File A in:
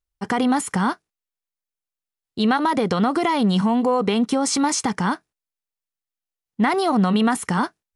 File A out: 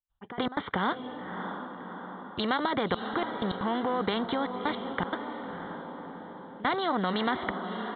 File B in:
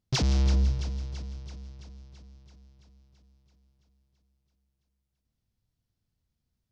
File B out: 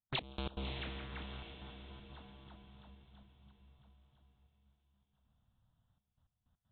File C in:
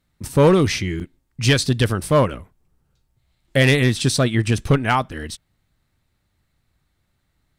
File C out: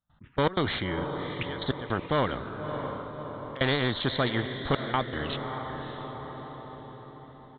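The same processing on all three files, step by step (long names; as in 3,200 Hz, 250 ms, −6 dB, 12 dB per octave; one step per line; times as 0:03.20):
low-shelf EQ 130 Hz −9 dB
downsampling to 8,000 Hz
phaser swept by the level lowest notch 390 Hz, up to 2,600 Hz, full sweep at −24.5 dBFS
gate pattern ".x..x.xxxxxxxxx." 158 BPM −24 dB
on a send: feedback delay with all-pass diffusion 614 ms, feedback 41%, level −15 dB
on the sum: every bin compressed towards the loudest bin 2 to 1
level −3 dB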